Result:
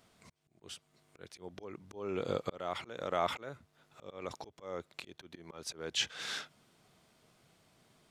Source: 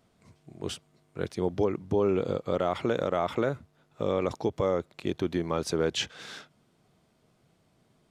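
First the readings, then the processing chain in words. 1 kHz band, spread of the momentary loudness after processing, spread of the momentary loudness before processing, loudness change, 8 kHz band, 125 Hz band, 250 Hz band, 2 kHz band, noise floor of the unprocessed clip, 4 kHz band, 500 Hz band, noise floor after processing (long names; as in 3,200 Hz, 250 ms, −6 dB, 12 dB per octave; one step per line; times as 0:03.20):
−6.5 dB, 18 LU, 13 LU, −10.0 dB, −2.5 dB, −15.0 dB, −15.5 dB, −4.0 dB, −68 dBFS, −2.0 dB, −12.5 dB, −74 dBFS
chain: volume swells 592 ms
tilt shelving filter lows −4.5 dB, about 790 Hz
level +1 dB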